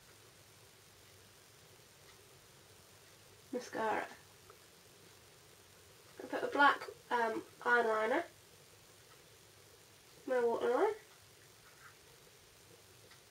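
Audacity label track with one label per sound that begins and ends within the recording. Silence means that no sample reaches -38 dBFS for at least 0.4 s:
3.530000	4.040000	sound
6.200000	8.220000	sound
10.280000	10.930000	sound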